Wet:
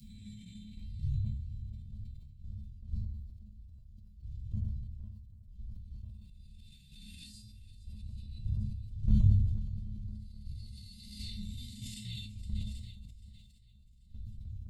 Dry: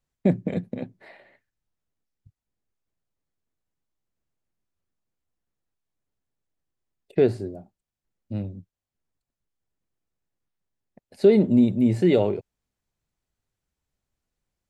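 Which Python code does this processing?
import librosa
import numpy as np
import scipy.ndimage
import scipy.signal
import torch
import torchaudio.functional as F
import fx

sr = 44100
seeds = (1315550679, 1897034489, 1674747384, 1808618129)

y = fx.spec_swells(x, sr, rise_s=1.84)
y = fx.dmg_wind(y, sr, seeds[0], corner_hz=93.0, level_db=-23.0)
y = scipy.signal.sosfilt(scipy.signal.cheby1(3, 1.0, [110.0, 3500.0], 'bandstop', fs=sr, output='sos'), y)
y = fx.notch_comb(y, sr, f0_hz=470.0)
y = fx.room_shoebox(y, sr, seeds[1], volume_m3=490.0, walls='furnished', distance_m=1.7)
y = fx.env_flanger(y, sr, rest_ms=6.3, full_db=-12.5)
y = fx.level_steps(y, sr, step_db=10)
y = fx.high_shelf(y, sr, hz=3400.0, db=11.0)
y = fx.echo_swing(y, sr, ms=786, ratio=1.5, feedback_pct=36, wet_db=-16)
y = fx.dynamic_eq(y, sr, hz=210.0, q=2.8, threshold_db=-57.0, ratio=4.0, max_db=5)
y = fx.comb_fb(y, sr, f0_hz=210.0, decay_s=0.49, harmonics='odd', damping=0.0, mix_pct=90)
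y = fx.sustainer(y, sr, db_per_s=40.0)
y = F.gain(torch.from_numpy(y), 7.0).numpy()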